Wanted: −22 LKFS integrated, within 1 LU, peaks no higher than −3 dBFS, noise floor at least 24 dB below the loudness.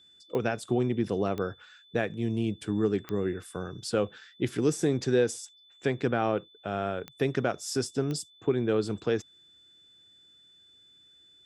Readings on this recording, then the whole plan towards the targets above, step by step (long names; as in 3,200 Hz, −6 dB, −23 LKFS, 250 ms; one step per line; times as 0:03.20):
number of clicks 5; interfering tone 3,500 Hz; level of the tone −56 dBFS; integrated loudness −30.0 LKFS; sample peak −13.5 dBFS; target loudness −22.0 LKFS
→ click removal
notch filter 3,500 Hz, Q 30
level +8 dB